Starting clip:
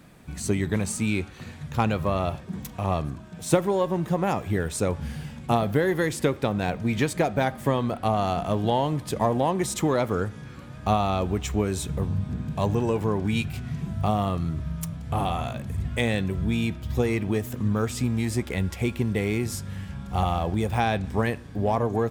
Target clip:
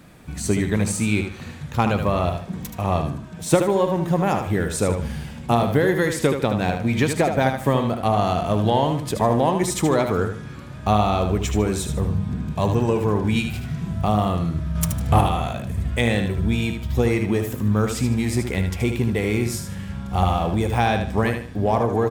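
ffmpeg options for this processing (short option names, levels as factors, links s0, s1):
-filter_complex "[0:a]asettb=1/sr,asplit=3[s0][s1][s2];[s0]atrim=end=14.754[s3];[s1]atrim=start=14.75:end=15.21,asetpts=PTS-STARTPTS,afade=t=in:d=0.004:c=qsin,afade=t=out:st=0.456:d=0.004:c=qsin,acontrast=83[s4];[s2]atrim=start=15.206[s5];[s3][s4]acrossfade=d=0.004:c1=hsin:c2=qsin[s6];[s6][s5]acrossfade=d=0.004:c1=qsin:c2=hsin,aecho=1:1:76|152|228|304:0.447|0.134|0.0402|0.0121,volume=1.5"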